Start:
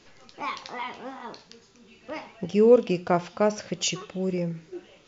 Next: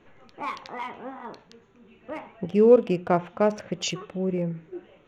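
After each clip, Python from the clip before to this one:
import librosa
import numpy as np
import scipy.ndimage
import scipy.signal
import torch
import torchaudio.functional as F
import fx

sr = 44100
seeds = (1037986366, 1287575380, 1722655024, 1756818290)

y = fx.wiener(x, sr, points=9)
y = fx.high_shelf(y, sr, hz=5200.0, db=-8.5)
y = y * librosa.db_to_amplitude(1.0)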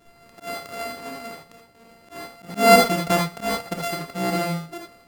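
y = np.r_[np.sort(x[:len(x) // 64 * 64].reshape(-1, 64), axis=1).ravel(), x[len(x) // 64 * 64:]]
y = fx.rev_gated(y, sr, seeds[0], gate_ms=100, shape='rising', drr_db=0.0)
y = fx.auto_swell(y, sr, attack_ms=135.0)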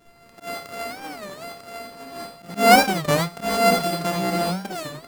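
y = x + 10.0 ** (-5.0 / 20.0) * np.pad(x, (int(946 * sr / 1000.0), 0))[:len(x)]
y = fx.record_warp(y, sr, rpm=33.33, depth_cents=250.0)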